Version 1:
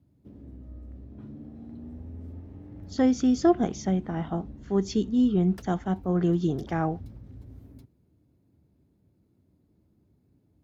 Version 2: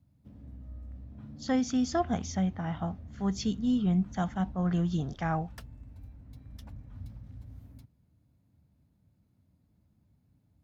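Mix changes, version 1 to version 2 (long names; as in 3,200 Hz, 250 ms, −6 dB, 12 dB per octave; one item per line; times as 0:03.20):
speech: entry −1.50 s
master: add parametric band 370 Hz −14.5 dB 0.83 octaves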